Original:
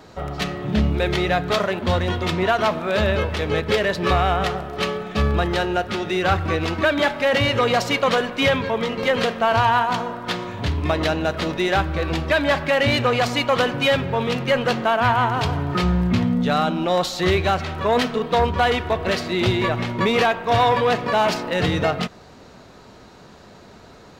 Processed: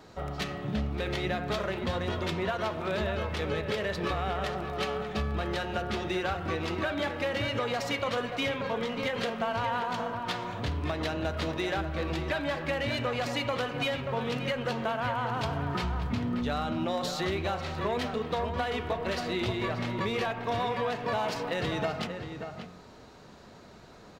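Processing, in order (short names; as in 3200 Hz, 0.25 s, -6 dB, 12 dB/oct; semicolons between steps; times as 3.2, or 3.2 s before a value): de-hum 89.36 Hz, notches 36; compressor, threshold -21 dBFS, peak gain reduction 8 dB; outdoor echo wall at 100 m, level -7 dB; gain -6.5 dB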